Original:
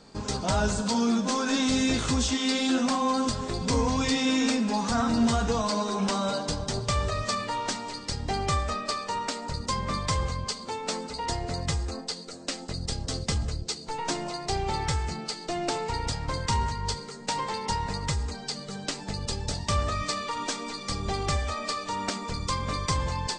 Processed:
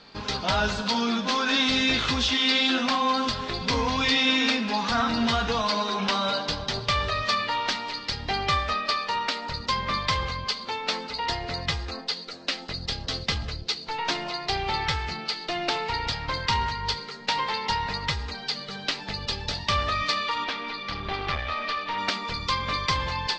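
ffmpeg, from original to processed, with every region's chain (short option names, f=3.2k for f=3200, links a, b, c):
-filter_complex "[0:a]asettb=1/sr,asplit=3[a][b][c];[a]atrim=end=20.444[d];[b]atrim=start=20.44:end=21.98,asetpts=PTS-STARTPTS,afade=t=in:d=0.004:c=qsin,afade=t=out:st=1.536:d=0.004:c=qsin,lowpass=3.4k,aeval=exprs='clip(val(0),-1,0.0237)':c=same[e];[c]atrim=start=21.976[f];[d][e]acrossfade=d=0.004:c1=hsin:c2=qsin[g];[g][f]acrossfade=d=0.004:c1=qsin:c2=hsin,lowpass=f=4.1k:w=0.5412,lowpass=f=4.1k:w=1.3066,tiltshelf=f=1.1k:g=-7.5,volume=4dB"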